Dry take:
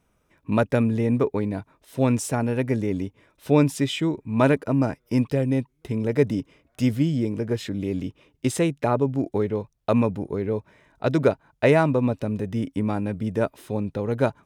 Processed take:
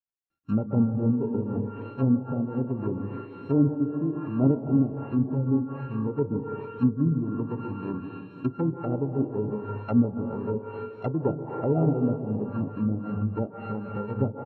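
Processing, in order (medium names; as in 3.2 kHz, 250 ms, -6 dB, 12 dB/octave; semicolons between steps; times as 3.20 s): sorted samples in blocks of 32 samples; feedback delay 432 ms, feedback 54%, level -14 dB; bit crusher 10-bit; on a send at -2 dB: bass shelf 160 Hz -5.5 dB + reverberation RT60 2.5 s, pre-delay 131 ms; on the sum: tremolo 3.8 Hz, depth 32%; treble shelf 9 kHz -11.5 dB; doubling 37 ms -14 dB; low-pass that closes with the level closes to 590 Hz, closed at -19 dBFS; spectral contrast expander 1.5:1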